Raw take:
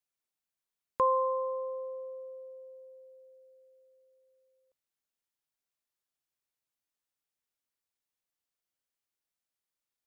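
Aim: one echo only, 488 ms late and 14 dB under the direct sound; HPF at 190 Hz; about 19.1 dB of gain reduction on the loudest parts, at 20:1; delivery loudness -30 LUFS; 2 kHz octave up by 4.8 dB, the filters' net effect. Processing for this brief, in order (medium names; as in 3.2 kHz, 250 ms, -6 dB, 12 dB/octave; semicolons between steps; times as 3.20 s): high-pass 190 Hz; peaking EQ 2 kHz +6.5 dB; compression 20:1, threshold -40 dBFS; delay 488 ms -14 dB; trim +16 dB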